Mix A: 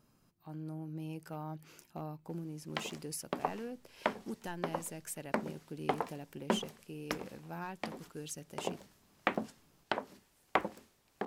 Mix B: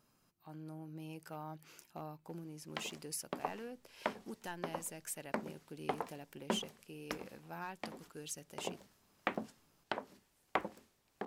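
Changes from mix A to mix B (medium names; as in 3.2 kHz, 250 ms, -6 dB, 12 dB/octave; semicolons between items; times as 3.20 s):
speech: add bass shelf 440 Hz -7.5 dB; background -4.5 dB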